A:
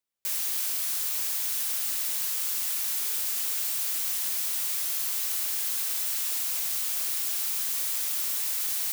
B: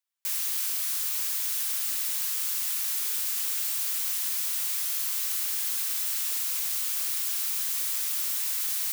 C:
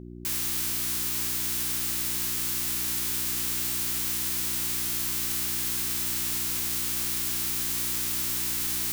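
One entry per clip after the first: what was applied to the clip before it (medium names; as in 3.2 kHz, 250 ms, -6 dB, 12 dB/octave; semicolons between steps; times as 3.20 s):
high-pass 850 Hz 24 dB/octave
formants flattened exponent 0.6; mains buzz 60 Hz, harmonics 6, -42 dBFS -1 dB/octave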